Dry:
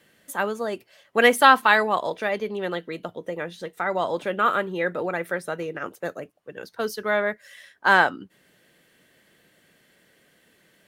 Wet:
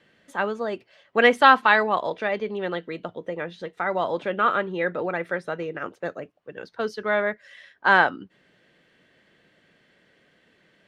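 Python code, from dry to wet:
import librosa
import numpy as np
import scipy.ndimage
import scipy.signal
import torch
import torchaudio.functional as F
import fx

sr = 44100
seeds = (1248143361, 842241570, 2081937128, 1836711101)

y = scipy.signal.sosfilt(scipy.signal.butter(2, 4100.0, 'lowpass', fs=sr, output='sos'), x)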